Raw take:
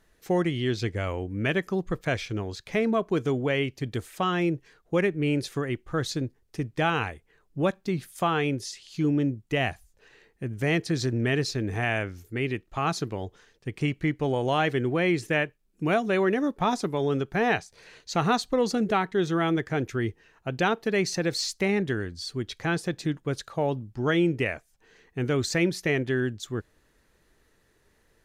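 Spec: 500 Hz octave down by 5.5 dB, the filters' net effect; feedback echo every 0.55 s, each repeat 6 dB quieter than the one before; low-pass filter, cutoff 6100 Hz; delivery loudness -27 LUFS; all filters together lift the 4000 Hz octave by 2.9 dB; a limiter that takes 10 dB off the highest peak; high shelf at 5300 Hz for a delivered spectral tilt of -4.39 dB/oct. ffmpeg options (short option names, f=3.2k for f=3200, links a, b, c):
-af "lowpass=6.1k,equalizer=f=500:t=o:g=-7.5,equalizer=f=4k:t=o:g=8,highshelf=f=5.3k:g=-8.5,alimiter=limit=-22.5dB:level=0:latency=1,aecho=1:1:550|1100|1650|2200|2750|3300:0.501|0.251|0.125|0.0626|0.0313|0.0157,volume=5dB"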